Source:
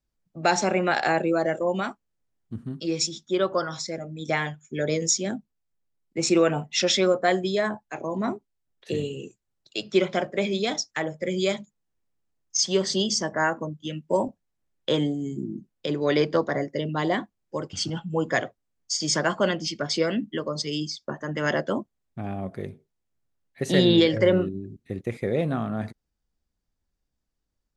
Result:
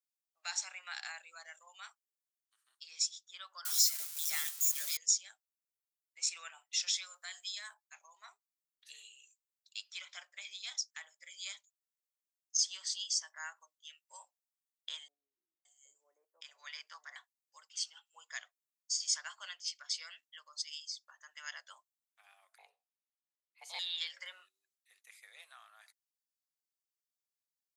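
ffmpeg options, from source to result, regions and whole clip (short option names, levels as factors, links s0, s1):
-filter_complex "[0:a]asettb=1/sr,asplit=3[s0][s1][s2];[s0]atrim=end=3.654[s3];[s1]atrim=start=3.65:end=4.97,asetpts=PTS-STARTPTS,afade=t=in:d=0.004:c=qsin,afade=t=out:st=1.316:d=0.004:c=qsin,aeval=exprs='val(0)+0.5*0.0316*sgn(val(0))':c=same,bass=f=250:g=-2,treble=f=4000:g=11,aecho=1:1:5.1:0.53,atrim=end_sample=58212[s4];[s2]atrim=start=4.966[s5];[s3][s4]acrossfade=d=0.004:c1=hsin:c2=qsin[s6];[s6][s5]acrossfade=d=0.004:c1=qsin:c2=hsin,asettb=1/sr,asplit=3[s7][s8][s9];[s7]atrim=end=6.734[s10];[s8]atrim=start=6.73:end=7.74,asetpts=PTS-STARTPTS,afade=t=in:d=0.004:c=qsin,afade=t=out:st=1.006:d=0.004:c=qsin,highpass=330,highshelf=f=2900:g=9,acompressor=threshold=0.0794:ratio=3:attack=3.2:release=140:knee=1:detection=peak[s11];[s9]atrim=start=7.736[s12];[s10][s11]acrossfade=d=0.004:c1=hsin:c2=qsin[s13];[s13][s12]acrossfade=d=0.004:c1=qsin:c2=hsin,asettb=1/sr,asplit=3[s14][s15][s16];[s14]atrim=end=15.084[s17];[s15]atrim=start=15.08:end=17.16,asetpts=PTS-STARTPTS,afade=t=in:d=0.004:c=qsin,afade=t=out:st=2.076:d=0.004:c=qsin,equalizer=f=4000:w=3.4:g=-9.5,acrossover=split=540[s18][s19];[s19]adelay=570[s20];[s18][s20]amix=inputs=2:normalize=0,atrim=end_sample=91728[s21];[s16]atrim=start=17.156[s22];[s17][s21]acrossfade=d=0.004:c1=hsin:c2=qsin[s23];[s23][s22]acrossfade=d=0.004:c1=qsin:c2=hsin,asettb=1/sr,asplit=3[s24][s25][s26];[s24]atrim=end=22.584[s27];[s25]atrim=start=22.58:end=23.79,asetpts=PTS-STARTPTS,afade=t=in:d=0.004:c=qsin,afade=t=out:st=1.206:d=0.004:c=qsin,aemphasis=mode=reproduction:type=bsi,afreqshift=330[s28];[s26]atrim=start=23.786[s29];[s27][s28]acrossfade=d=0.004:c1=hsin:c2=qsin[s30];[s30][s29]acrossfade=d=0.004:c1=qsin:c2=hsin,highpass=f=930:w=0.5412,highpass=f=930:w=1.3066,aderivative,volume=0.562"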